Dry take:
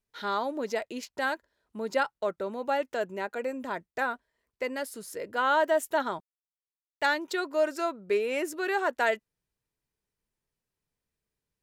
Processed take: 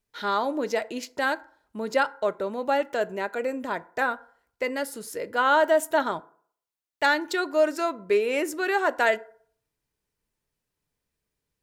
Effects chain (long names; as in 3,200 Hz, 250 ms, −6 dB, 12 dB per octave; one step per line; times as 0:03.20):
feedback delay network reverb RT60 0.54 s, low-frequency decay 0.8×, high-frequency decay 0.5×, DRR 14.5 dB
level +4 dB